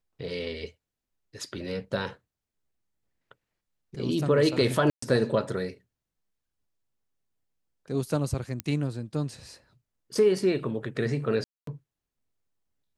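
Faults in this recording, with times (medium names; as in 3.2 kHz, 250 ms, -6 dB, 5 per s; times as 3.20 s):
4.90–5.02 s: dropout 124 ms
8.60 s: pop -14 dBFS
11.44–11.67 s: dropout 233 ms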